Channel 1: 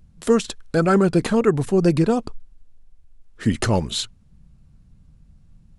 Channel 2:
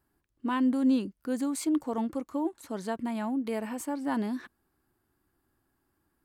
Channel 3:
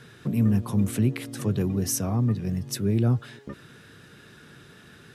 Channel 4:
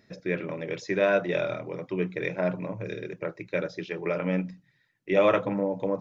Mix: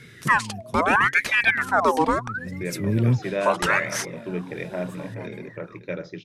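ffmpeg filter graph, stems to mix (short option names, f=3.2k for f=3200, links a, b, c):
-filter_complex "[0:a]aeval=exprs='val(0)*sin(2*PI*1400*n/s+1400*0.55/0.75*sin(2*PI*0.75*n/s))':c=same,volume=0dB,asplit=2[a][b];[1:a]adelay=1100,volume=-12.5dB,asplit=2[c][d];[d]volume=-18dB[e];[2:a]equalizer=f=870:w=1.5:g=-12,volume=2.5dB[f];[3:a]lowshelf=f=170:g=8,adelay=2350,volume=-3.5dB,asplit=2[g][h];[h]volume=-13dB[i];[b]apad=whole_len=226815[j];[f][j]sidechaincompress=threshold=-33dB:ratio=16:attack=16:release=686[k];[e][i]amix=inputs=2:normalize=0,aecho=0:1:433:1[l];[a][c][k][g][l]amix=inputs=5:normalize=0"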